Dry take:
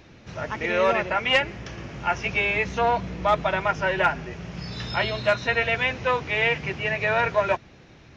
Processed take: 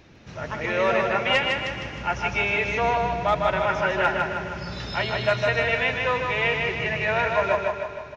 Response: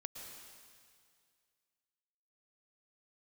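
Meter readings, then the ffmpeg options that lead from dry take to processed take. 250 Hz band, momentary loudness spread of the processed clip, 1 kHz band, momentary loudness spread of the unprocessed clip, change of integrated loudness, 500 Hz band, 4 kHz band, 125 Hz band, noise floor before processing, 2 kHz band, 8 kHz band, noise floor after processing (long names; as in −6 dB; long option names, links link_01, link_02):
+0.5 dB, 9 LU, +0.5 dB, 12 LU, 0.0 dB, +1.0 dB, +0.5 dB, +0.5 dB, −50 dBFS, +0.5 dB, can't be measured, −41 dBFS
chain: -filter_complex "[0:a]aecho=1:1:155|310|465|620|775|930:0.631|0.315|0.158|0.0789|0.0394|0.0197,asplit=2[link_01][link_02];[1:a]atrim=start_sample=2205[link_03];[link_02][link_03]afir=irnorm=-1:irlink=0,volume=-0.5dB[link_04];[link_01][link_04]amix=inputs=2:normalize=0,volume=-5.5dB"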